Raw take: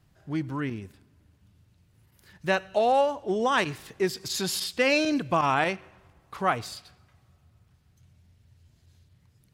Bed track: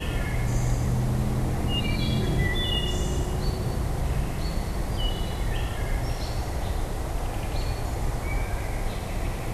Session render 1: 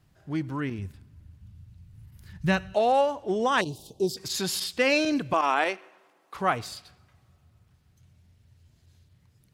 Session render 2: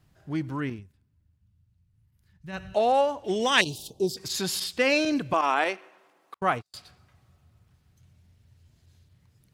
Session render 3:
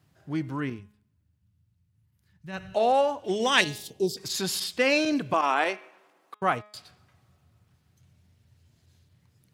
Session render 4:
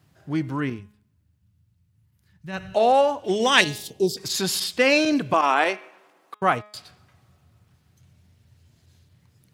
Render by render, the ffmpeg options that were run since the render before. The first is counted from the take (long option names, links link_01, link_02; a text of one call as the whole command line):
ffmpeg -i in.wav -filter_complex "[0:a]asplit=3[link_01][link_02][link_03];[link_01]afade=type=out:start_time=0.78:duration=0.02[link_04];[link_02]asubboost=boost=11:cutoff=160,afade=type=in:start_time=0.78:duration=0.02,afade=type=out:start_time=2.72:duration=0.02[link_05];[link_03]afade=type=in:start_time=2.72:duration=0.02[link_06];[link_04][link_05][link_06]amix=inputs=3:normalize=0,asettb=1/sr,asplit=3[link_07][link_08][link_09];[link_07]atrim=end=3.614[link_10];[link_08]atrim=start=3.61:end=4.17,asetpts=PTS-STARTPTS,afade=type=in:duration=0.004:curve=qsin,afade=type=out:start_time=0.556:duration=0.004:curve=qsin,asuperstop=centerf=1700:order=8:qfactor=0.69[link_11];[link_09]atrim=start=4.166[link_12];[link_10][link_11]acrossfade=duration=0.004:curve1=hsin:curve2=qsin[link_13];[link_13][link_12]acrossfade=duration=0.004:curve1=qsin:curve2=hsin,asettb=1/sr,asplit=3[link_14][link_15][link_16];[link_14]atrim=end=5.334[link_17];[link_15]atrim=start=5.33:end=6.35,asetpts=PTS-STARTPTS,afade=type=in:duration=0.004:curve=qsin,afade=type=out:start_time=1.016:duration=0.004:curve=qsin,highpass=frequency=290:width=0.5412,highpass=frequency=290:width=1.3066[link_18];[link_16]atrim=start=6.346[link_19];[link_17][link_18]acrossfade=duration=0.004:curve1=hsin:curve2=qsin[link_20];[link_20][link_19]acrossfade=duration=0.004:curve1=qsin:curve2=hsin" out.wav
ffmpeg -i in.wav -filter_complex "[0:a]asettb=1/sr,asplit=3[link_01][link_02][link_03];[link_01]atrim=end=3.244[link_04];[link_02]atrim=start=3.24:end=3.88,asetpts=PTS-STARTPTS,afade=type=in:duration=0.004:curve=qsin,afade=type=out:start_time=0.636:duration=0.004:curve=qsin,highshelf=frequency=1700:width_type=q:width=1.5:gain=8[link_05];[link_03]atrim=start=3.876[link_06];[link_04][link_05]acrossfade=duration=0.004:curve1=hsin:curve2=qsin[link_07];[link_07][link_06]acrossfade=duration=0.004:curve1=qsin:curve2=hsin,asettb=1/sr,asplit=3[link_08][link_09][link_10];[link_08]atrim=end=6.344[link_11];[link_09]atrim=start=6.34:end=6.74,asetpts=PTS-STARTPTS,afade=type=in:duration=0.004:curve=qsin,afade=type=out:start_time=0.396:duration=0.004:curve=qsin,agate=range=-45dB:threshold=-34dB:ratio=16:release=100:detection=peak[link_12];[link_10]atrim=start=6.736[link_13];[link_11][link_12]acrossfade=duration=0.004:curve1=hsin:curve2=qsin[link_14];[link_14][link_13]acrossfade=duration=0.004:curve1=qsin:curve2=hsin,asplit=3[link_15][link_16][link_17];[link_15]atrim=end=0.84,asetpts=PTS-STARTPTS,afade=type=out:start_time=0.7:duration=0.14:silence=0.149624[link_18];[link_16]atrim=start=0.84:end=2.52,asetpts=PTS-STARTPTS,volume=-16.5dB[link_19];[link_17]atrim=start=2.52,asetpts=PTS-STARTPTS,afade=type=in:duration=0.14:silence=0.149624[link_20];[link_18][link_19][link_20]concat=n=3:v=0:a=1" out.wav
ffmpeg -i in.wav -af "highpass=91,bandreject=frequency=209.8:width_type=h:width=4,bandreject=frequency=419.6:width_type=h:width=4,bandreject=frequency=629.4:width_type=h:width=4,bandreject=frequency=839.2:width_type=h:width=4,bandreject=frequency=1049:width_type=h:width=4,bandreject=frequency=1258.8:width_type=h:width=4,bandreject=frequency=1468.6:width_type=h:width=4,bandreject=frequency=1678.4:width_type=h:width=4,bandreject=frequency=1888.2:width_type=h:width=4,bandreject=frequency=2098:width_type=h:width=4,bandreject=frequency=2307.8:width_type=h:width=4,bandreject=frequency=2517.6:width_type=h:width=4,bandreject=frequency=2727.4:width_type=h:width=4,bandreject=frequency=2937.2:width_type=h:width=4,bandreject=frequency=3147:width_type=h:width=4,bandreject=frequency=3356.8:width_type=h:width=4,bandreject=frequency=3566.6:width_type=h:width=4,bandreject=frequency=3776.4:width_type=h:width=4" out.wav
ffmpeg -i in.wav -af "volume=4.5dB" out.wav